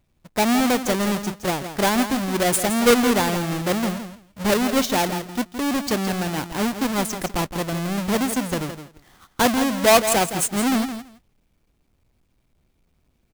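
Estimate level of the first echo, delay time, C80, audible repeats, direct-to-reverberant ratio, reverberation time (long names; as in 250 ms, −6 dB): −10.0 dB, 166 ms, no reverb audible, 2, no reverb audible, no reverb audible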